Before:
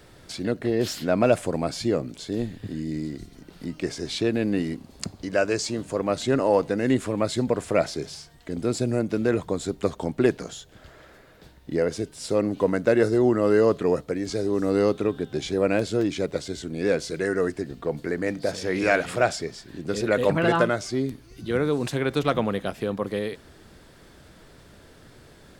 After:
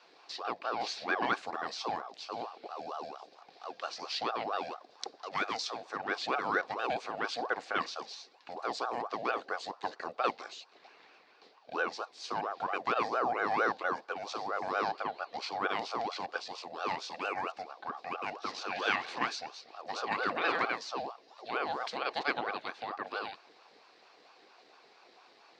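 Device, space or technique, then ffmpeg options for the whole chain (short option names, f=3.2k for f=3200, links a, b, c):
voice changer toy: -af "aeval=exprs='val(0)*sin(2*PI*680*n/s+680*0.5/4.4*sin(2*PI*4.4*n/s))':c=same,highpass=560,equalizer=f=590:t=q:w=4:g=-8,equalizer=f=940:t=q:w=4:g=-8,equalizer=f=1.3k:t=q:w=4:g=-7,equalizer=f=2k:t=q:w=4:g=-4,equalizer=f=3.1k:t=q:w=4:g=-5,equalizer=f=4.5k:t=q:w=4:g=3,lowpass=f=4.9k:w=0.5412,lowpass=f=4.9k:w=1.3066"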